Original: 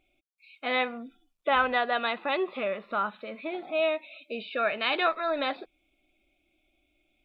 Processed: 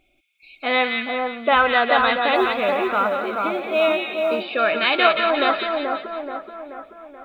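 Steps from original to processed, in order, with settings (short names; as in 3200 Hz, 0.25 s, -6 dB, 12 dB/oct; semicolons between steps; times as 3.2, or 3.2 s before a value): split-band echo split 1500 Hz, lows 0.431 s, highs 0.177 s, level -3 dB; 2.35–4.43 companded quantiser 8-bit; gain +7.5 dB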